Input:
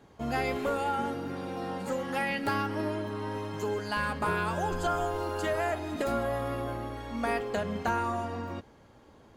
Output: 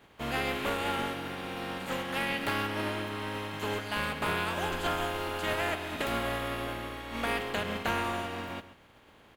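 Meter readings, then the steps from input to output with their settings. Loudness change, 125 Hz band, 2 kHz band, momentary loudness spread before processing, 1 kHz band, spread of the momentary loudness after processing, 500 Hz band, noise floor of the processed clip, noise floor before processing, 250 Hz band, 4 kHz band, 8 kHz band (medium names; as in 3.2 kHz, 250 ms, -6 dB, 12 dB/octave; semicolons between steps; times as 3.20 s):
-1.0 dB, -2.5 dB, +2.0 dB, 6 LU, -2.0 dB, 6 LU, -3.5 dB, -58 dBFS, -57 dBFS, -2.5 dB, +7.0 dB, +2.0 dB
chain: spectral contrast reduction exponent 0.51; resonant high shelf 4.1 kHz -9 dB, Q 1.5; echo from a far wall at 23 m, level -14 dB; trim -1.5 dB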